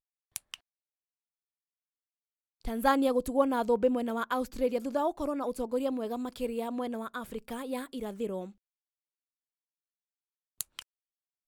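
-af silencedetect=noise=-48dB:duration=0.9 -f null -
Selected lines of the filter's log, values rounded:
silence_start: 0.56
silence_end: 2.61 | silence_duration: 2.06
silence_start: 8.51
silence_end: 10.61 | silence_duration: 2.09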